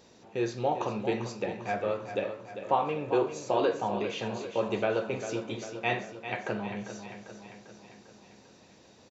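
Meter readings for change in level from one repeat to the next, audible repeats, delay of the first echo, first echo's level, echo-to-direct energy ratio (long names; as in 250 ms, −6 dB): −5.0 dB, 6, 397 ms, −10.0 dB, −8.5 dB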